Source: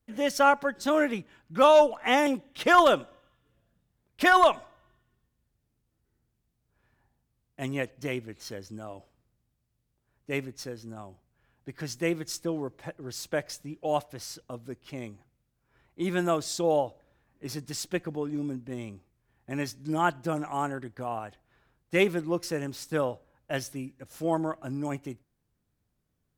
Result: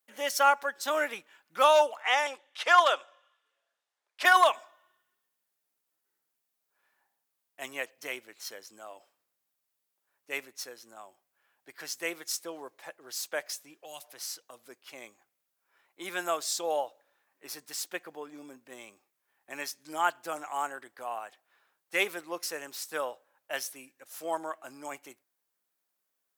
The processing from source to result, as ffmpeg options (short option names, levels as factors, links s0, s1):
-filter_complex "[0:a]asettb=1/sr,asplit=3[s0][s1][s2];[s0]atrim=end=2.024[s3];[s1]atrim=start=2.02:end=4.25,asetpts=PTS-STARTPTS,afade=t=in:d=0.004:c=qsin,afade=t=out:st=2.226:d=0.004:c=qsin,highpass=520,lowpass=6800[s4];[s2]atrim=start=4.246[s5];[s3][s4]acrossfade=d=0.004:c1=hsin:c2=qsin[s6];[s6][s5]acrossfade=d=0.004:c1=qsin:c2=hsin,asettb=1/sr,asplit=3[s7][s8][s9];[s7]atrim=end=13.754[s10];[s8]atrim=start=13.75:end=14.66,asetpts=PTS-STARTPTS,afade=t=in:d=0.004:c=qsin,afade=t=out:st=0.906:d=0.004:c=qsin,acrossover=split=200|3000[s11][s12][s13];[s12]acompressor=threshold=0.01:ratio=6:attack=3.2:release=140:knee=2.83:detection=peak[s14];[s11][s14][s13]amix=inputs=3:normalize=0[s15];[s9]atrim=start=14.656[s16];[s10][s15]acrossfade=d=0.004:c1=hsin:c2=qsin[s17];[s17][s16]acrossfade=d=0.004:c1=qsin:c2=hsin,asettb=1/sr,asplit=3[s18][s19][s20];[s18]atrim=end=17.454[s21];[s19]atrim=start=17.45:end=18.61,asetpts=PTS-STARTPTS,afade=t=in:d=0.004:c=qsin,afade=t=out:st=1.156:d=0.004:c=qsin,equalizer=f=6100:w=0.46:g=-3.5[s22];[s20]atrim=start=18.606[s23];[s21][s22]acrossfade=d=0.004:c1=hsin:c2=qsin[s24];[s24][s23]acrossfade=d=0.004:c1=qsin:c2=hsin,highpass=720,highshelf=f=10000:g=10"